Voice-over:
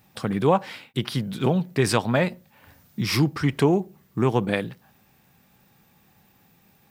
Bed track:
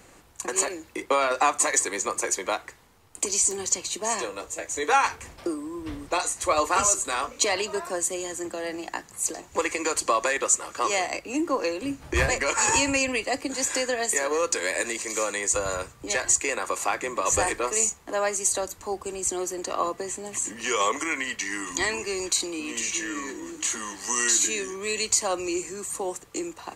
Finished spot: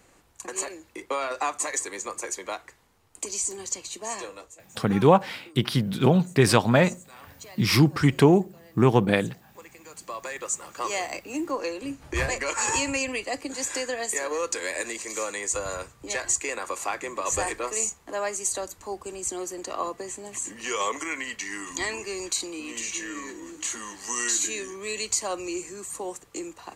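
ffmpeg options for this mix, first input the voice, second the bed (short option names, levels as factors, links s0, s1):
-filter_complex "[0:a]adelay=4600,volume=1.33[s0];[1:a]volume=3.98,afade=t=out:st=4.31:d=0.31:silence=0.16788,afade=t=in:st=9.86:d=1.14:silence=0.125893[s1];[s0][s1]amix=inputs=2:normalize=0"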